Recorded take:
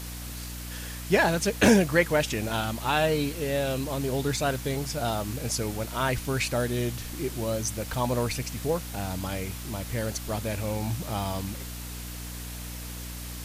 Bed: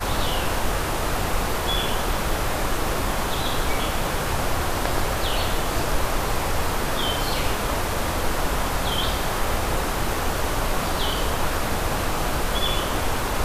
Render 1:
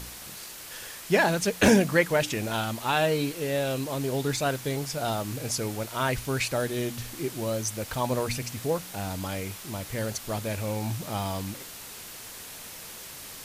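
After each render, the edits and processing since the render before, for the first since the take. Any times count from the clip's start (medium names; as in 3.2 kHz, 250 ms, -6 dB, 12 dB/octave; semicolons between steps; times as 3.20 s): de-hum 60 Hz, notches 5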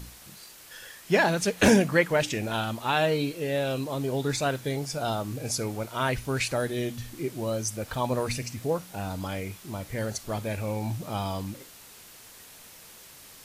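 noise print and reduce 7 dB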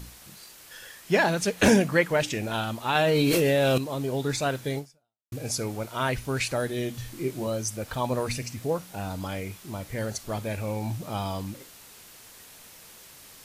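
2.95–3.78 s: level flattener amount 100%; 4.78–5.32 s: fade out exponential; 6.92–7.47 s: doubling 23 ms -5 dB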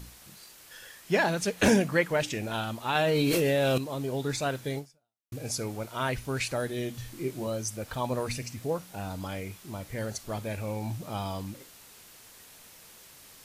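trim -3 dB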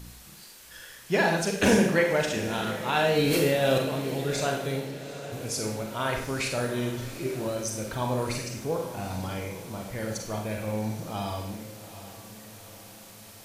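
echo that smears into a reverb 797 ms, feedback 55%, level -13.5 dB; Schroeder reverb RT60 0.65 s, combs from 33 ms, DRR 2 dB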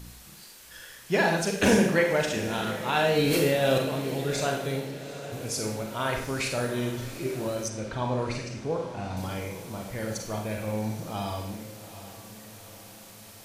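7.68–9.17 s: distance through air 92 m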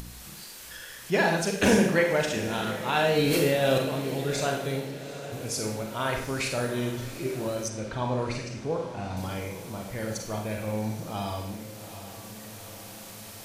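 upward compressor, threshold -36 dBFS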